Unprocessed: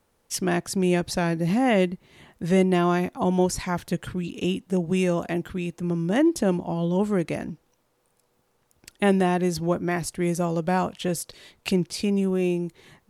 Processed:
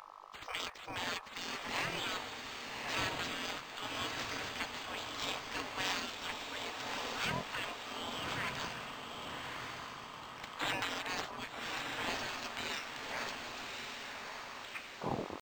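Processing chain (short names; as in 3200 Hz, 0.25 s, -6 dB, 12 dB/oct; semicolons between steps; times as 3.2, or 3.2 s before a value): tape stop at the end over 2.73 s; buzz 50 Hz, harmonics 26, -38 dBFS -7 dB/oct; tempo 0.85×; in parallel at 0 dB: vocal rider within 5 dB 2 s; on the sum: spectral gate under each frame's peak -30 dB weak; on a send: diffused feedback echo 1.153 s, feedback 47%, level -3.5 dB; on the sum: decimation joined by straight lines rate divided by 4×; gain +1 dB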